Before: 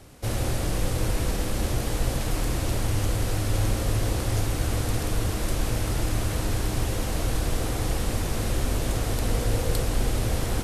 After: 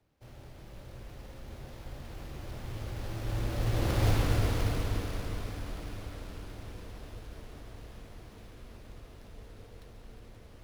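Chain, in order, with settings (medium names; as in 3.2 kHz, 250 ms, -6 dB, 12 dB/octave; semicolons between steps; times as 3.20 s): Doppler pass-by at 4.11 s, 25 m/s, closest 7 m; on a send: multi-head delay 176 ms, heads second and third, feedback 42%, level -9 dB; on the sum: sliding maximum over 5 samples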